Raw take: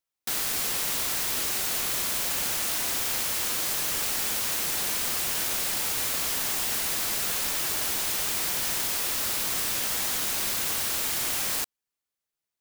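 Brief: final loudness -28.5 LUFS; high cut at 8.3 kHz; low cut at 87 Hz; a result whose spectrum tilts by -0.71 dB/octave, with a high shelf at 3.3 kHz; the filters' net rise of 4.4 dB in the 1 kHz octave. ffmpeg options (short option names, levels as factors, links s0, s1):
-af "highpass=87,lowpass=8300,equalizer=f=1000:t=o:g=5,highshelf=f=3300:g=4.5,volume=0.794"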